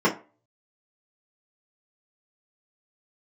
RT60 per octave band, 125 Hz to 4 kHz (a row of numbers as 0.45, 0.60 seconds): 0.30, 0.30, 0.35, 0.35, 0.30, 0.20 seconds